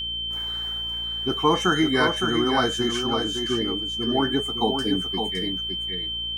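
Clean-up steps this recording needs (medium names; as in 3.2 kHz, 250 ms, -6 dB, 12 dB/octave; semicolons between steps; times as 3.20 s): de-hum 57.7 Hz, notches 8; band-stop 3.1 kHz, Q 30; inverse comb 562 ms -6 dB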